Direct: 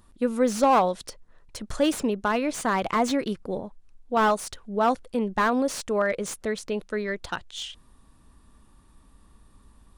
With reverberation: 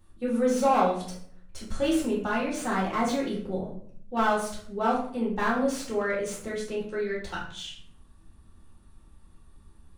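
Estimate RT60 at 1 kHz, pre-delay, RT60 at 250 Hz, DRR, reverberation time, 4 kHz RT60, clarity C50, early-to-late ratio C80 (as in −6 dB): 0.55 s, 3 ms, 0.90 s, −6.5 dB, 0.60 s, 0.40 s, 4.5 dB, 9.0 dB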